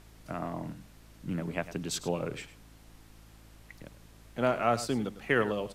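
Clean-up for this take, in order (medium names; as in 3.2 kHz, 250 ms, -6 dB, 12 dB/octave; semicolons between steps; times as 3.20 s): de-hum 54.5 Hz, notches 6; noise print and reduce 22 dB; inverse comb 102 ms -14.5 dB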